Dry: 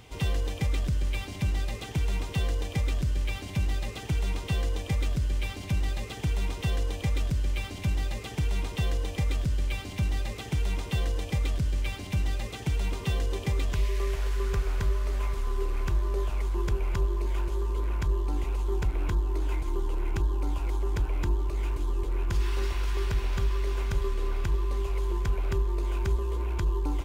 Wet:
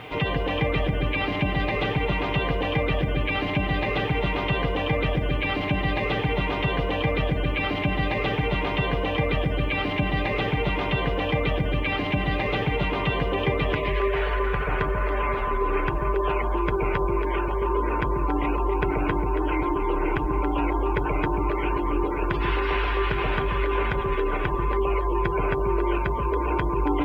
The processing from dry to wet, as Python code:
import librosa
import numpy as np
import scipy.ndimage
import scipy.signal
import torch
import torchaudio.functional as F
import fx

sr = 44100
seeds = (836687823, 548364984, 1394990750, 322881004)

p1 = fx.highpass(x, sr, hz=330.0, slope=6)
p2 = fx.spec_gate(p1, sr, threshold_db=-25, keep='strong')
p3 = scipy.signal.sosfilt(scipy.signal.butter(4, 2900.0, 'lowpass', fs=sr, output='sos'), p2)
p4 = p3 + 0.36 * np.pad(p3, (int(6.7 * sr / 1000.0), 0))[:len(p3)]
p5 = fx.over_compress(p4, sr, threshold_db=-42.0, ratio=-1.0)
p6 = p4 + (p5 * 10.0 ** (-1.0 / 20.0))
p7 = fx.quant_dither(p6, sr, seeds[0], bits=12, dither='none')
p8 = p7 + fx.echo_alternate(p7, sr, ms=139, hz=860.0, feedback_pct=52, wet_db=-2.5, dry=0)
y = p8 * 10.0 ** (9.0 / 20.0)